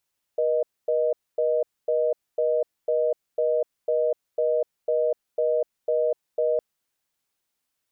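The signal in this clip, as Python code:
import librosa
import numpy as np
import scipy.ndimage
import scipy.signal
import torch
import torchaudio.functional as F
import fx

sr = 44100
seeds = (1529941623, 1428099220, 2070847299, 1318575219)

y = fx.call_progress(sr, length_s=6.21, kind='reorder tone', level_db=-22.5)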